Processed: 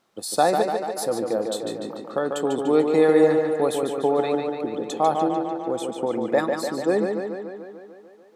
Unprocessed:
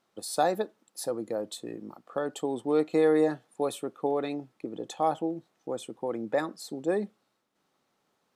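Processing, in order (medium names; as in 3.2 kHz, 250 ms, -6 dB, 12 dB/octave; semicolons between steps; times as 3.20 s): tape echo 146 ms, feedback 71%, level -4 dB, low-pass 6 kHz; trim +6 dB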